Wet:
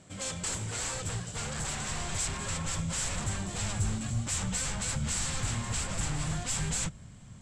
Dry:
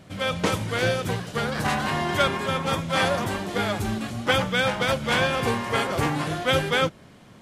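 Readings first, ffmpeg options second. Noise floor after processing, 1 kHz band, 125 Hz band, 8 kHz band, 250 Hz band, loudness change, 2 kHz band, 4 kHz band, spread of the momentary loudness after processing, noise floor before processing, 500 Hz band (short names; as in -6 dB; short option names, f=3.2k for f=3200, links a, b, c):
-49 dBFS, -15.0 dB, -4.0 dB, +7.0 dB, -10.0 dB, -8.0 dB, -14.0 dB, -10.0 dB, 4 LU, -49 dBFS, -19.0 dB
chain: -af "aeval=exprs='0.0531*(abs(mod(val(0)/0.0531+3,4)-2)-1)':c=same,lowpass=f=7.7k:t=q:w=9.6,asubboost=boost=9.5:cutoff=120,volume=-8dB"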